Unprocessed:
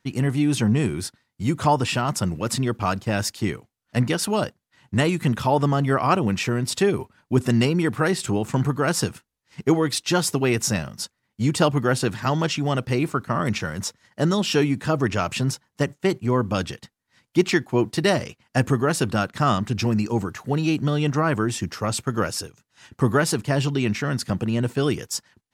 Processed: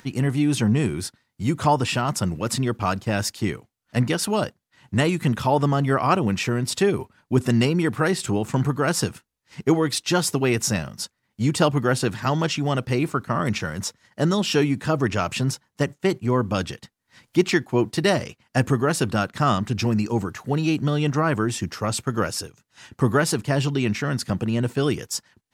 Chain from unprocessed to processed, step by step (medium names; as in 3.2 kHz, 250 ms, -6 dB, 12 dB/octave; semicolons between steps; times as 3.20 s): upward compressor, threshold -39 dBFS